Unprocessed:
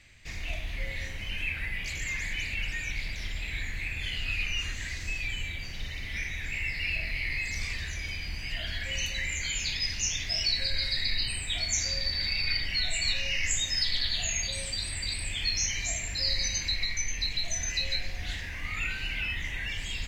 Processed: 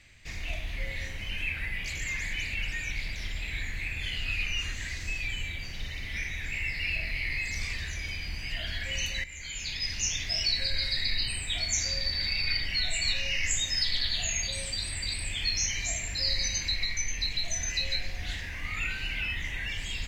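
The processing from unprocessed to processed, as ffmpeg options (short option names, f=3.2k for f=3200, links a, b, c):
-filter_complex "[0:a]asplit=2[a][b];[a]atrim=end=9.24,asetpts=PTS-STARTPTS,afade=t=out:st=9.236:d=0.004:c=hsin:silence=0.199526[c];[b]atrim=start=9.24,asetpts=PTS-STARTPTS,afade=t=in:d=0.78:silence=0.199526[d];[c][d]concat=n=2:v=0:a=1"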